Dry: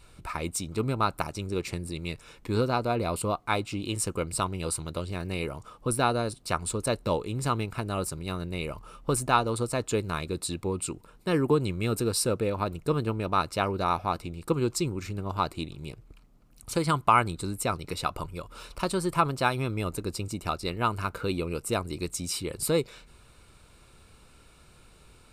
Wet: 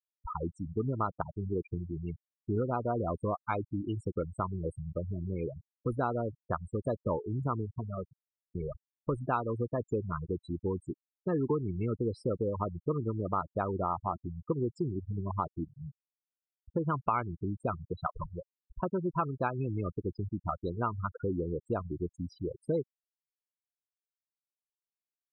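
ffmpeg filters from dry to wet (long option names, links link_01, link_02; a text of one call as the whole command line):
ffmpeg -i in.wav -filter_complex "[0:a]asplit=2[link_01][link_02];[link_01]atrim=end=8.55,asetpts=PTS-STARTPTS,afade=type=out:start_time=7.57:duration=0.98[link_03];[link_02]atrim=start=8.55,asetpts=PTS-STARTPTS,afade=type=in:duration=0.004:curve=hsin[link_04];[link_03][link_04]concat=n=2:v=0:a=1,afftfilt=real='re*gte(hypot(re,im),0.0794)':imag='im*gte(hypot(re,im),0.0794)':win_size=1024:overlap=0.75,lowpass=1700,acompressor=threshold=-29dB:ratio=2.5" out.wav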